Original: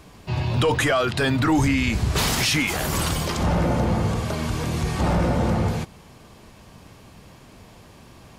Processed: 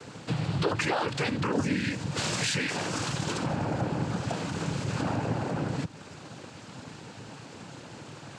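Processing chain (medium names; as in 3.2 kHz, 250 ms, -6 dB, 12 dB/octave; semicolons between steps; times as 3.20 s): compression 3:1, threshold -34 dBFS, peak gain reduction 13 dB; noise-vocoded speech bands 8; trim +4.5 dB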